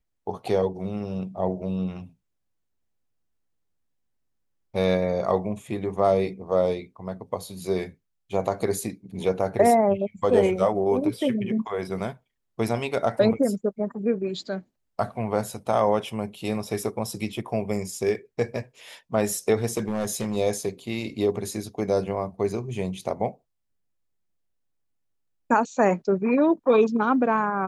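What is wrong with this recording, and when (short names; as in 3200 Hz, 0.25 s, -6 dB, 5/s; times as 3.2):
19.77–20.37 clipped -22 dBFS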